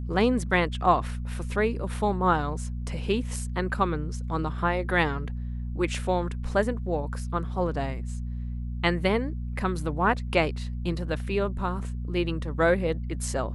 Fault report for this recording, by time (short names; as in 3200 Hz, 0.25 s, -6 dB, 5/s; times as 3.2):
hum 60 Hz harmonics 4 -32 dBFS